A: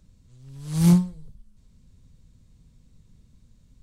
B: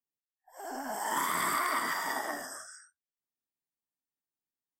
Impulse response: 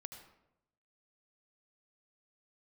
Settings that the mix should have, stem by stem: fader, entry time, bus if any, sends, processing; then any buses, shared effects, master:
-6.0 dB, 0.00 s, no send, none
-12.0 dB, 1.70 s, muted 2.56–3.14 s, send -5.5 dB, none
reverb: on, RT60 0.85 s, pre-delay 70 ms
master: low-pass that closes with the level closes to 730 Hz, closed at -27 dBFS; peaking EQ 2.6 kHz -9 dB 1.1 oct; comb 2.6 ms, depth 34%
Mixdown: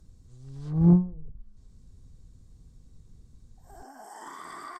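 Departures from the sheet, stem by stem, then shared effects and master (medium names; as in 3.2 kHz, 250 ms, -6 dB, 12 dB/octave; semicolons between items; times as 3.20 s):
stem A -6.0 dB -> +1.5 dB; stem B: entry 1.70 s -> 3.10 s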